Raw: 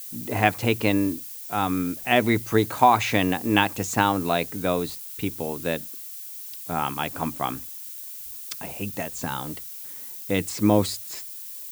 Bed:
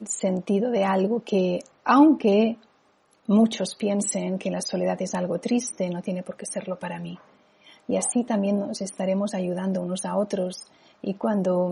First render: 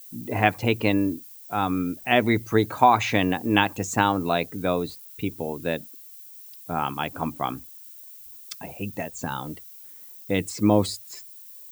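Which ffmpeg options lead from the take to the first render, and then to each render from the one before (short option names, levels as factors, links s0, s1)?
-af "afftdn=nr=10:nf=-38"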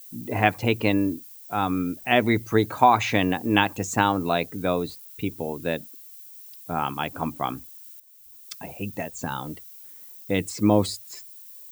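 -filter_complex "[0:a]asplit=2[s0][s1];[s0]atrim=end=8,asetpts=PTS-STARTPTS,afade=t=out:st=7.996:d=0.004:c=hsin:silence=0.237137[s2];[s1]atrim=start=8,asetpts=PTS-STARTPTS,afade=t=in:d=0.62:silence=0.237137[s3];[s2][s3]concat=n=2:v=0:a=1"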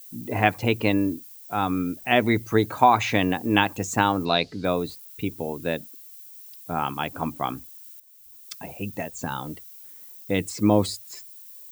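-filter_complex "[0:a]asettb=1/sr,asplit=3[s0][s1][s2];[s0]atrim=end=4.254[s3];[s1]atrim=start=4.25:end=4.65,asetpts=PTS-STARTPTS,afade=t=in:d=0.004:c=qsin,afade=t=out:st=0.396:d=0.004:c=qsin,lowpass=f=4500:t=q:w=5.8[s4];[s2]atrim=start=4.646[s5];[s3][s4]acrossfade=d=0.004:c1=hsin:c2=qsin[s6];[s6][s5]acrossfade=d=0.004:c1=qsin:c2=hsin"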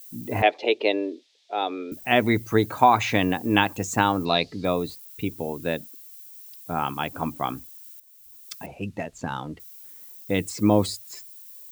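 -filter_complex "[0:a]asettb=1/sr,asplit=3[s0][s1][s2];[s0]atrim=end=0.424[s3];[s1]atrim=start=0.42:end=1.92,asetpts=PTS-STARTPTS,afade=t=in:d=0.004:c=qsin,afade=t=out:st=1.496:d=0.004:c=qsin,highpass=f=360:w=0.5412,highpass=f=360:w=1.3066,equalizer=f=400:t=q:w=4:g=7,equalizer=f=620:t=q:w=4:g=6,equalizer=f=1100:t=q:w=4:g=-9,equalizer=f=1500:t=q:w=4:g=-8,equalizer=f=3600:t=q:w=4:g=7,lowpass=f=4800:w=0.5412,lowpass=f=4800:w=1.3066[s4];[s2]atrim=start=1.916[s5];[s3][s4]acrossfade=d=0.004:c1=hsin:c2=qsin[s6];[s6][s5]acrossfade=d=0.004:c1=qsin:c2=hsin,asettb=1/sr,asplit=3[s7][s8][s9];[s7]atrim=end=4.274[s10];[s8]atrim=start=4.27:end=5.08,asetpts=PTS-STARTPTS,afade=t=in:d=0.004:c=qsin,afade=t=out:st=0.806:d=0.004:c=qsin,asuperstop=centerf=1500:order=4:qfactor=7.1[s11];[s9]atrim=start=5.076[s12];[s10][s11]acrossfade=d=0.004:c1=hsin:c2=qsin[s13];[s13][s12]acrossfade=d=0.004:c1=qsin:c2=hsin,asettb=1/sr,asplit=3[s14][s15][s16];[s14]atrim=end=8.664[s17];[s15]atrim=start=8.66:end=9.6,asetpts=PTS-STARTPTS,afade=t=in:d=0.004:c=qsin,afade=t=out:st=0.936:d=0.004:c=qsin,adynamicsmooth=sensitivity=5:basefreq=4400[s18];[s16]atrim=start=9.596[s19];[s17][s18]acrossfade=d=0.004:c1=hsin:c2=qsin[s20];[s20][s19]acrossfade=d=0.004:c1=qsin:c2=hsin"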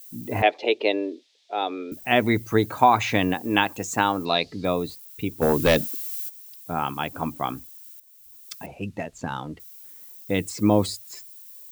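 -filter_complex "[0:a]asettb=1/sr,asplit=3[s0][s1][s2];[s0]atrim=end=3.344[s3];[s1]atrim=start=3.34:end=4.46,asetpts=PTS-STARTPTS,afade=t=in:d=0.004:c=qsin,afade=t=out:st=1.116:d=0.004:c=qsin,lowshelf=f=160:g=-9[s4];[s2]atrim=start=4.456[s5];[s3][s4]acrossfade=d=0.004:c1=hsin:c2=qsin[s6];[s6][s5]acrossfade=d=0.004:c1=qsin:c2=hsin,asplit=3[s7][s8][s9];[s7]afade=t=out:st=5.41:d=0.02[s10];[s8]aeval=exprs='0.266*sin(PI/2*2.82*val(0)/0.266)':c=same,afade=t=in:st=5.41:d=0.02,afade=t=out:st=6.28:d=0.02[s11];[s9]afade=t=in:st=6.28:d=0.02[s12];[s10][s11][s12]amix=inputs=3:normalize=0"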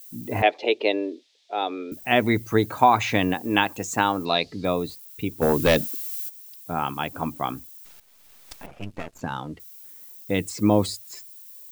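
-filter_complex "[0:a]asplit=3[s0][s1][s2];[s0]afade=t=out:st=7.84:d=0.02[s3];[s1]aeval=exprs='max(val(0),0)':c=same,afade=t=in:st=7.84:d=0.02,afade=t=out:st=9.2:d=0.02[s4];[s2]afade=t=in:st=9.2:d=0.02[s5];[s3][s4][s5]amix=inputs=3:normalize=0"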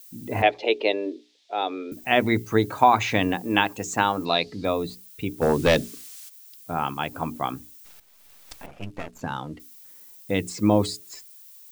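-filter_complex "[0:a]bandreject=f=60:t=h:w=6,bandreject=f=120:t=h:w=6,bandreject=f=180:t=h:w=6,bandreject=f=240:t=h:w=6,bandreject=f=300:t=h:w=6,bandreject=f=360:t=h:w=6,bandreject=f=420:t=h:w=6,acrossover=split=9600[s0][s1];[s1]acompressor=threshold=0.00708:ratio=4:attack=1:release=60[s2];[s0][s2]amix=inputs=2:normalize=0"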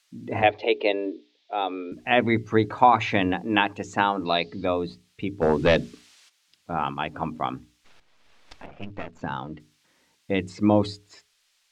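-af "lowpass=3700,bandreject=f=50:t=h:w=6,bandreject=f=100:t=h:w=6,bandreject=f=150:t=h:w=6"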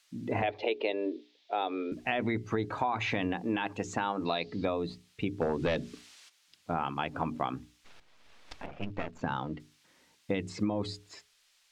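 -af "alimiter=limit=0.237:level=0:latency=1:release=10,acompressor=threshold=0.0447:ratio=6"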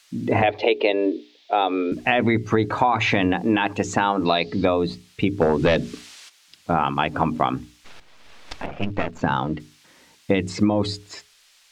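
-af "volume=3.76"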